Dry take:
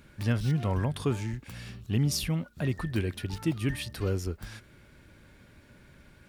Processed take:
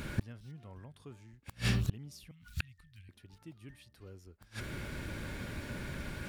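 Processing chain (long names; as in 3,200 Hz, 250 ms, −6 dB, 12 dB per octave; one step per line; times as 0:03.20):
0:02.31–0:03.09: Chebyshev band-stop filter 100–2,300 Hz, order 2
gate with flip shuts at −32 dBFS, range −36 dB
level +14 dB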